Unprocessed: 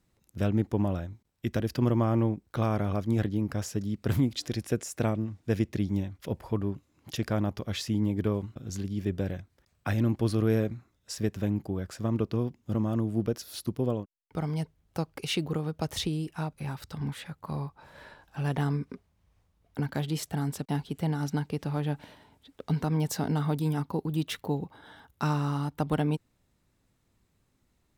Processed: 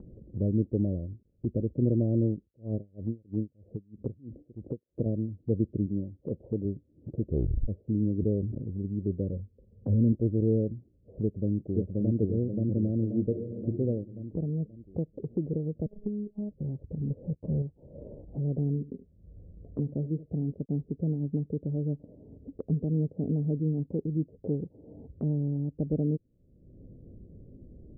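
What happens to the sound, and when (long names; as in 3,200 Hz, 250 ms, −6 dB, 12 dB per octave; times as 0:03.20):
0:02.42–0:05.06: tremolo with a sine in dB 3.1 Hz, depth 36 dB
0:05.86–0:06.65: high-pass filter 140 Hz 6 dB per octave
0:07.21: tape stop 0.47 s
0:08.18–0:08.64: level that may fall only so fast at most 38 dB per second
0:09.32–0:10.13: EQ curve with evenly spaced ripples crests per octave 0.9, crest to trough 10 dB
0:11.22–0:12.18: delay throw 530 ms, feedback 50%, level −1 dB
0:13.28–0:13.78: thrown reverb, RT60 1.1 s, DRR 3 dB
0:15.86–0:16.51: phases set to zero 208 Hz
0:17.10–0:17.62: leveller curve on the samples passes 3
0:18.67–0:20.52: single-tap delay 74 ms −17 dB
whole clip: Butterworth low-pass 550 Hz 48 dB per octave; upward compression, threshold −29 dBFS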